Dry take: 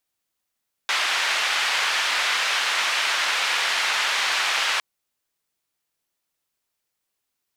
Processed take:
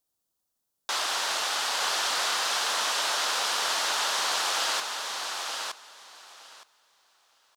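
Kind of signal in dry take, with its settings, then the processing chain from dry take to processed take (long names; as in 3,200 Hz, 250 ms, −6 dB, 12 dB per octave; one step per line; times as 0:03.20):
band-limited noise 1,100–3,000 Hz, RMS −23 dBFS 3.91 s
parametric band 2,200 Hz −13.5 dB 1.1 octaves
on a send: repeating echo 916 ms, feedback 16%, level −5 dB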